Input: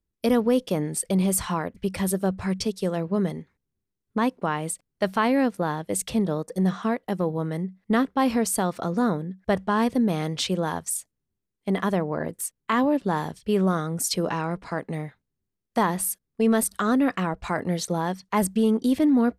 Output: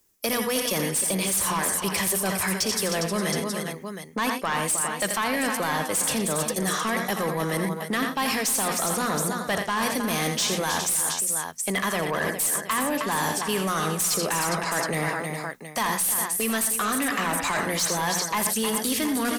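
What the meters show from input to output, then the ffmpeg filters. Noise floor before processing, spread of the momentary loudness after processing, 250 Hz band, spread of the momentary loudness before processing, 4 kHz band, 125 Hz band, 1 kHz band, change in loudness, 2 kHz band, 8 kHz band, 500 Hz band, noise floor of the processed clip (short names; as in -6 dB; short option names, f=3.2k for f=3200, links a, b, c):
-83 dBFS, 4 LU, -5.5 dB, 8 LU, +7.5 dB, -4.0 dB, +1.5 dB, +0.5 dB, +6.5 dB, +8.0 dB, -2.5 dB, -36 dBFS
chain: -filter_complex "[0:a]acrossover=split=160|1300[a][b][c];[a]acompressor=threshold=-34dB:ratio=4[d];[b]acompressor=threshold=-35dB:ratio=4[e];[c]acompressor=threshold=-34dB:ratio=4[f];[d][e][f]amix=inputs=3:normalize=0,aexciter=amount=4:drive=2.6:freq=5.4k,asplit=2[g][h];[h]aecho=0:1:62|84|119|312|408|720:0.1|0.299|0.158|0.251|0.188|0.15[i];[g][i]amix=inputs=2:normalize=0,aeval=exprs='(tanh(5.62*val(0)+0.25)-tanh(0.25))/5.62':c=same,bandreject=f=60:t=h:w=6,bandreject=f=120:t=h:w=6,bandreject=f=180:t=h:w=6,bandreject=f=240:t=h:w=6,asplit=2[j][k];[k]highpass=f=720:p=1,volume=21dB,asoftclip=type=tanh:threshold=-12.5dB[l];[j][l]amix=inputs=2:normalize=0,lowpass=f=7.3k:p=1,volume=-6dB,bandreject=f=1.4k:w=18,areverse,acompressor=threshold=-29dB:ratio=6,areverse,volume=6dB"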